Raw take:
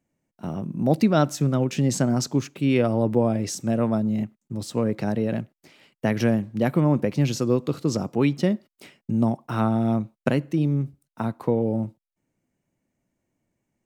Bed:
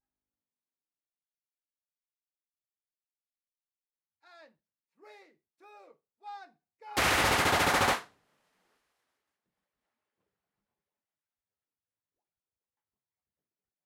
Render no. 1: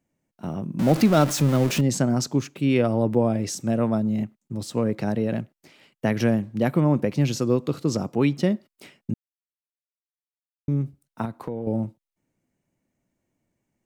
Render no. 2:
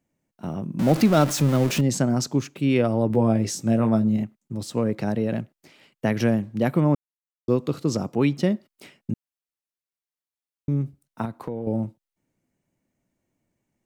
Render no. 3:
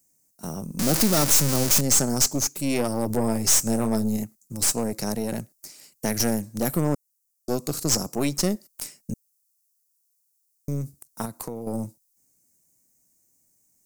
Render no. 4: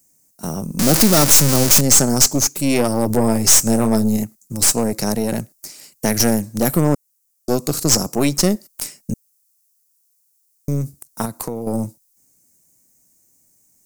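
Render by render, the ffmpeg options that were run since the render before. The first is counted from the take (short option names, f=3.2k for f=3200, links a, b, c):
-filter_complex "[0:a]asettb=1/sr,asplit=3[a][b][c];[a]atrim=end=0.794[d];[b]atrim=start=0.79:end=1.81,asetpts=PTS-STARTPTS,afade=t=in:d=0.004:c=qsin,afade=t=out:st=1.016:d=0.004:c=qsin,aeval=exprs='val(0)+0.5*0.0562*sgn(val(0))':c=same[e];[c]atrim=start=1.806[f];[d][e]acrossfade=d=0.004:c1=hsin:c2=qsin[g];[g][f]acrossfade=d=0.004:c1=qsin:c2=hsin,asettb=1/sr,asplit=3[h][i][j];[h]atrim=end=11.254[k];[i]atrim=start=11.25:end=11.67,asetpts=PTS-STARTPTS,afade=t=in:d=0.004:c=qsin,afade=t=out:st=0.416:d=0.004:c=qsin,acompressor=threshold=-29dB:ratio=3:attack=3.2:release=140:knee=1:detection=peak[l];[j]atrim=start=11.666[m];[k][l]acrossfade=d=0.004:c1=hsin:c2=qsin[n];[n][m]acrossfade=d=0.004:c1=qsin:c2=hsin,asplit=3[o][p][q];[o]atrim=end=9.14,asetpts=PTS-STARTPTS,afade=t=out:st=9.136:d=0.004:c=hsin[r];[p]atrim=start=9.14:end=10.68,asetpts=PTS-STARTPTS,volume=0[s];[q]atrim=start=10.68,asetpts=PTS-STARTPTS,afade=t=in:d=0.004:c=hsin[t];[r][s][t]concat=n=3:v=0:a=1"
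-filter_complex "[0:a]asettb=1/sr,asplit=3[a][b][c];[a]atrim=end=3.084[d];[b]atrim=start=3.08:end=4.17,asetpts=PTS-STARTPTS,afade=t=in:d=0.004:c=qsin,afade=t=out:st=1.086:d=0.004:c=qsin,asplit=2[e][f];[f]adelay=18,volume=-5.5dB[g];[e][g]amix=inputs=2:normalize=0,atrim=end_sample=48069[h];[c]atrim=start=4.166[i];[d][h]acrossfade=d=0.004:c1=hsin:c2=qsin[j];[j][i]acrossfade=d=0.004:c1=qsin:c2=hsin,asplit=3[k][l][m];[k]atrim=end=6.95,asetpts=PTS-STARTPTS,afade=t=out:st=6.946:d=0.004:c=hsin[n];[l]atrim=start=6.95:end=7.48,asetpts=PTS-STARTPTS,volume=0[o];[m]atrim=start=7.48,asetpts=PTS-STARTPTS,afade=t=in:d=0.004:c=hsin[p];[n][o][p]concat=n=3:v=0:a=1"
-af "aexciter=amount=14.7:drive=5.7:freq=4.9k,aeval=exprs='(tanh(6.31*val(0)+0.65)-tanh(0.65))/6.31':c=same"
-af "volume=7.5dB"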